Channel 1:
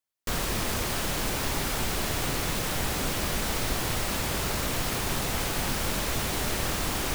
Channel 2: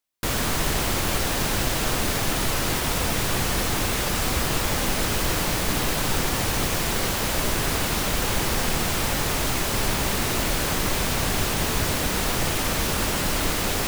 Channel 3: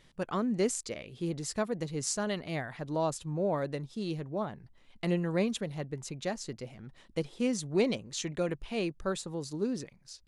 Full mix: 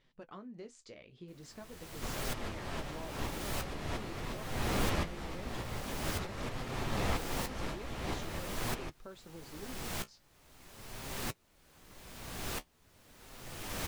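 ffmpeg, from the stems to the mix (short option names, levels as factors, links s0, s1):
-filter_complex "[0:a]aemphasis=mode=reproduction:type=75fm,bandreject=f=1500:w=25,adelay=1750,volume=1.26[s0];[1:a]aeval=exprs='val(0)*pow(10,-39*if(lt(mod(-0.78*n/s,1),2*abs(-0.78)/1000),1-mod(-0.78*n/s,1)/(2*abs(-0.78)/1000),(mod(-0.78*n/s,1)-2*abs(-0.78)/1000)/(1-2*abs(-0.78)/1000))/20)':c=same,adelay=1050,volume=0.422[s1];[2:a]lowpass=5000,equalizer=f=91:t=o:w=1.4:g=-4,acompressor=threshold=0.0141:ratio=5,volume=0.531,asplit=2[s2][s3];[s3]apad=whole_len=392220[s4];[s0][s4]sidechaincompress=threshold=0.00251:ratio=8:attack=8.2:release=297[s5];[s5][s1][s2]amix=inputs=3:normalize=0,flanger=delay=7.6:depth=9.2:regen=-42:speed=0.45:shape=sinusoidal"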